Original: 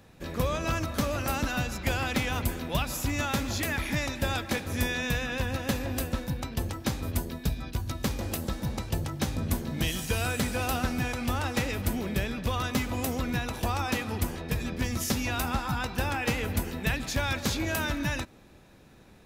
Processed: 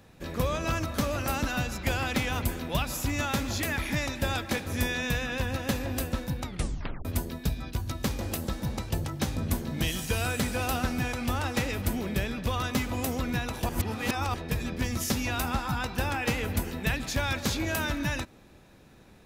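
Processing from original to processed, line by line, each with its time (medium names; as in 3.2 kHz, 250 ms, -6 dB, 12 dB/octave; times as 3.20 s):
6.43 s: tape stop 0.62 s
13.69–14.34 s: reverse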